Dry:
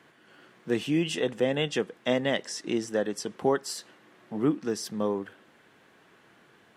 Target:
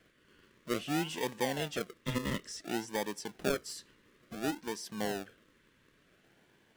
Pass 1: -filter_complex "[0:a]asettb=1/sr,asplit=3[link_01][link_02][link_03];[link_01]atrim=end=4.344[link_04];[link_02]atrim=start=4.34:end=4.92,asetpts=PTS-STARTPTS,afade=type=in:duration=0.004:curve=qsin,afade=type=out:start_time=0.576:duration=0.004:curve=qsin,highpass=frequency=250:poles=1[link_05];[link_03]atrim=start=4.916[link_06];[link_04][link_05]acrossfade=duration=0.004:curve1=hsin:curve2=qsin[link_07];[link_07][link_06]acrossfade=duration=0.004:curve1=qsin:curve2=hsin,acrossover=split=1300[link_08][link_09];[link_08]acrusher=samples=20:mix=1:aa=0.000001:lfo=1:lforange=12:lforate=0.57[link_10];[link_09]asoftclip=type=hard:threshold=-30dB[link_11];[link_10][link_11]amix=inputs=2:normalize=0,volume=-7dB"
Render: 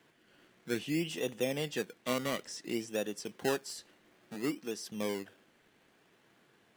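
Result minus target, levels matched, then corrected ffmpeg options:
sample-and-hold swept by an LFO: distortion −10 dB
-filter_complex "[0:a]asettb=1/sr,asplit=3[link_01][link_02][link_03];[link_01]atrim=end=4.344[link_04];[link_02]atrim=start=4.34:end=4.92,asetpts=PTS-STARTPTS,afade=type=in:duration=0.004:curve=qsin,afade=type=out:start_time=0.576:duration=0.004:curve=qsin,highpass=frequency=250:poles=1[link_05];[link_03]atrim=start=4.916[link_06];[link_04][link_05]acrossfade=duration=0.004:curve1=hsin:curve2=qsin[link_07];[link_07][link_06]acrossfade=duration=0.004:curve1=qsin:curve2=hsin,acrossover=split=1300[link_08][link_09];[link_08]acrusher=samples=45:mix=1:aa=0.000001:lfo=1:lforange=27:lforate=0.57[link_10];[link_09]asoftclip=type=hard:threshold=-30dB[link_11];[link_10][link_11]amix=inputs=2:normalize=0,volume=-7dB"

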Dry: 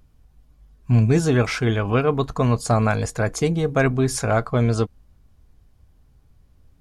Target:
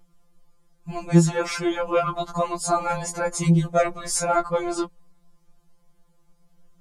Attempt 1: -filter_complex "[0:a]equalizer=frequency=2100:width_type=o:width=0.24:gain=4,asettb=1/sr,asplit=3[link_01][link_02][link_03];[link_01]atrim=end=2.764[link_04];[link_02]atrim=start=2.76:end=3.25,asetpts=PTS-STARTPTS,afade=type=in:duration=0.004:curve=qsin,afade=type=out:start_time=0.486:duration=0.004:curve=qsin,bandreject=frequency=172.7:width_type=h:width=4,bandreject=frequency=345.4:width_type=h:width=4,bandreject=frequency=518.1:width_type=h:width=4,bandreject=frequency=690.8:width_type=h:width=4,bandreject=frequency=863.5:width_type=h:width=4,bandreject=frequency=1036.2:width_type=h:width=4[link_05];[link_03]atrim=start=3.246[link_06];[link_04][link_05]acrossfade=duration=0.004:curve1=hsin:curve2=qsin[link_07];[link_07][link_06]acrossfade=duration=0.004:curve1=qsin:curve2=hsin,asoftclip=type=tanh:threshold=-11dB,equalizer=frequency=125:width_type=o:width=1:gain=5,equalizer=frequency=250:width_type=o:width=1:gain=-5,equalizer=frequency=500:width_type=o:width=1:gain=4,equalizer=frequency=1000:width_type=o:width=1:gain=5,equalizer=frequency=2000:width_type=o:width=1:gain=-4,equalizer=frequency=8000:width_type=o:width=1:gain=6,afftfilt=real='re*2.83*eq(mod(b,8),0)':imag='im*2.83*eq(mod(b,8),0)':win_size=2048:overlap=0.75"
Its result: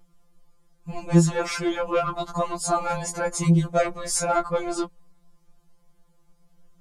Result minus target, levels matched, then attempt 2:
soft clipping: distortion +13 dB
-filter_complex "[0:a]equalizer=frequency=2100:width_type=o:width=0.24:gain=4,asettb=1/sr,asplit=3[link_01][link_02][link_03];[link_01]atrim=end=2.764[link_04];[link_02]atrim=start=2.76:end=3.25,asetpts=PTS-STARTPTS,afade=type=in:duration=0.004:curve=qsin,afade=type=out:start_time=0.486:duration=0.004:curve=qsin,bandreject=frequency=172.7:width_type=h:width=4,bandreject=frequency=345.4:width_type=h:width=4,bandreject=frequency=518.1:width_type=h:width=4,bandreject=frequency=690.8:width_type=h:width=4,bandreject=frequency=863.5:width_type=h:width=4,bandreject=frequency=1036.2:width_type=h:width=4[link_05];[link_03]atrim=start=3.246[link_06];[link_04][link_05]acrossfade=duration=0.004:curve1=hsin:curve2=qsin[link_07];[link_07][link_06]acrossfade=duration=0.004:curve1=qsin:curve2=hsin,asoftclip=type=tanh:threshold=-3dB,equalizer=frequency=125:width_type=o:width=1:gain=5,equalizer=frequency=250:width_type=o:width=1:gain=-5,equalizer=frequency=500:width_type=o:width=1:gain=4,equalizer=frequency=1000:width_type=o:width=1:gain=5,equalizer=frequency=2000:width_type=o:width=1:gain=-4,equalizer=frequency=8000:width_type=o:width=1:gain=6,afftfilt=real='re*2.83*eq(mod(b,8),0)':imag='im*2.83*eq(mod(b,8),0)':win_size=2048:overlap=0.75"

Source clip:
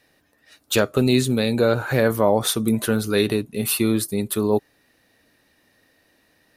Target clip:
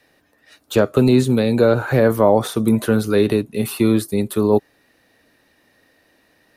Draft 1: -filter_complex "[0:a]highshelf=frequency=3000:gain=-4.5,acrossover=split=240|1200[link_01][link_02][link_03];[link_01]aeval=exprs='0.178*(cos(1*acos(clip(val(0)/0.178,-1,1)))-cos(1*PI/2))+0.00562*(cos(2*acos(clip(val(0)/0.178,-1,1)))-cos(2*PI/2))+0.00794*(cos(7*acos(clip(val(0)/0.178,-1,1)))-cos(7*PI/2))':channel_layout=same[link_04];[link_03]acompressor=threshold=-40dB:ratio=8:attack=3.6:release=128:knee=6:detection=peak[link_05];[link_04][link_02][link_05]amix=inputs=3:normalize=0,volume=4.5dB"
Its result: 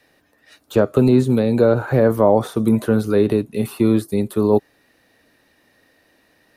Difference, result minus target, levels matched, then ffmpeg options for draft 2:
downward compressor: peak gain reduction +8.5 dB
-filter_complex "[0:a]highshelf=frequency=3000:gain=-4.5,acrossover=split=240|1200[link_01][link_02][link_03];[link_01]aeval=exprs='0.178*(cos(1*acos(clip(val(0)/0.178,-1,1)))-cos(1*PI/2))+0.00562*(cos(2*acos(clip(val(0)/0.178,-1,1)))-cos(2*PI/2))+0.00794*(cos(7*acos(clip(val(0)/0.178,-1,1)))-cos(7*PI/2))':channel_layout=same[link_04];[link_03]acompressor=threshold=-30.5dB:ratio=8:attack=3.6:release=128:knee=6:detection=peak[link_05];[link_04][link_02][link_05]amix=inputs=3:normalize=0,volume=4.5dB"

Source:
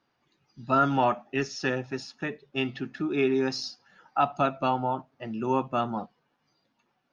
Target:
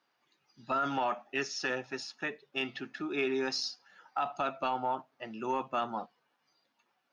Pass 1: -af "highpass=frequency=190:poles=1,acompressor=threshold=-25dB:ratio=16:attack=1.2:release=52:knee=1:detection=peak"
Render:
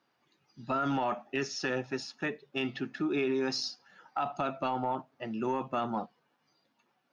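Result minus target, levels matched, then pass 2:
250 Hz band +4.5 dB
-af "highpass=frequency=680:poles=1,acompressor=threshold=-25dB:ratio=16:attack=1.2:release=52:knee=1:detection=peak"

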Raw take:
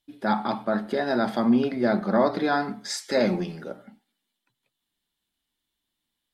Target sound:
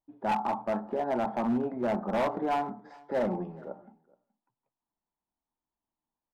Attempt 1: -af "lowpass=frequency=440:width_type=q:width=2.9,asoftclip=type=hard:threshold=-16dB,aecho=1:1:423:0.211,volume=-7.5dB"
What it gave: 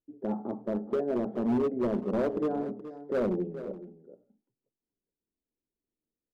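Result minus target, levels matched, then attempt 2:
1,000 Hz band −10.0 dB; echo-to-direct +11.5 dB
-af "lowpass=frequency=910:width_type=q:width=2.9,asoftclip=type=hard:threshold=-16dB,aecho=1:1:423:0.0562,volume=-7.5dB"

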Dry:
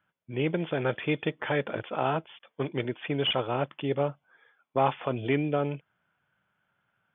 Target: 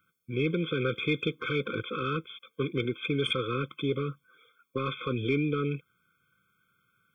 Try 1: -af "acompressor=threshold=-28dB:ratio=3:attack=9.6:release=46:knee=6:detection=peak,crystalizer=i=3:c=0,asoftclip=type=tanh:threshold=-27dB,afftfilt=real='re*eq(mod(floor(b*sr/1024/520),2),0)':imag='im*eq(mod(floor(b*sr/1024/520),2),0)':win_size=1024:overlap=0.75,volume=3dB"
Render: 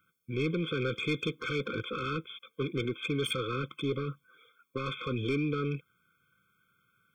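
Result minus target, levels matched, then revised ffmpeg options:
soft clipping: distortion +14 dB
-af "acompressor=threshold=-28dB:ratio=3:attack=9.6:release=46:knee=6:detection=peak,crystalizer=i=3:c=0,asoftclip=type=tanh:threshold=-17dB,afftfilt=real='re*eq(mod(floor(b*sr/1024/520),2),0)':imag='im*eq(mod(floor(b*sr/1024/520),2),0)':win_size=1024:overlap=0.75,volume=3dB"

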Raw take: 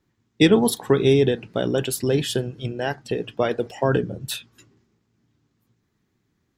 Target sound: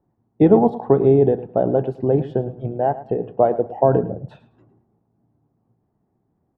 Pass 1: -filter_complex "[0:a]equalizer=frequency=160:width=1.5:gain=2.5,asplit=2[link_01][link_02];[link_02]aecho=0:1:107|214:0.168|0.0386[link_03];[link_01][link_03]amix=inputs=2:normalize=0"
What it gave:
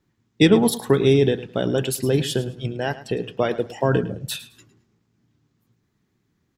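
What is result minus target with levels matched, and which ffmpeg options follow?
1,000 Hz band −4.5 dB
-filter_complex "[0:a]lowpass=frequency=750:width_type=q:width=3.3,equalizer=frequency=160:width=1.5:gain=2.5,asplit=2[link_01][link_02];[link_02]aecho=0:1:107|214:0.168|0.0386[link_03];[link_01][link_03]amix=inputs=2:normalize=0"

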